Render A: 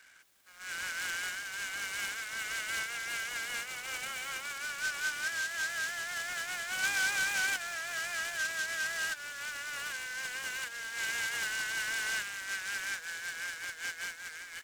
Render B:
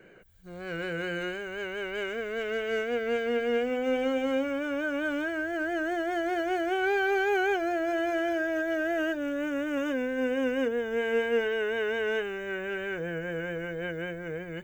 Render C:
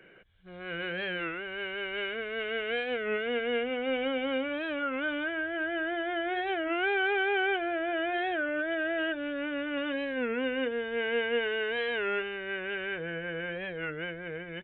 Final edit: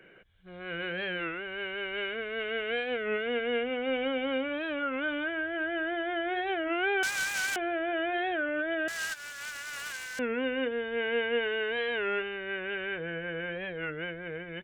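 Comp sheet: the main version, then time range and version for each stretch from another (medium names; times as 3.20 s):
C
7.03–7.56 s: from A
8.88–10.19 s: from A
not used: B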